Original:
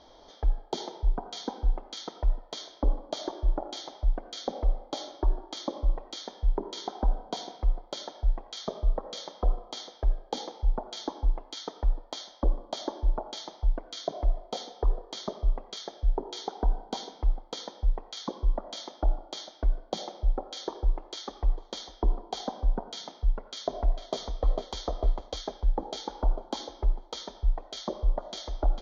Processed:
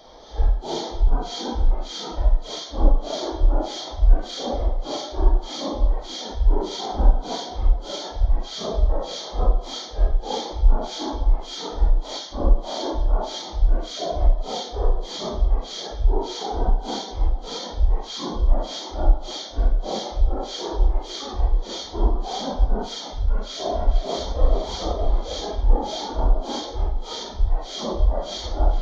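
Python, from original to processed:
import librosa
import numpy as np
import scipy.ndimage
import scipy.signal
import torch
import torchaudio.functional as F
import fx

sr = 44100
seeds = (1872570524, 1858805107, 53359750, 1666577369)

y = fx.phase_scramble(x, sr, seeds[0], window_ms=200)
y = y * 10.0 ** (8.0 / 20.0)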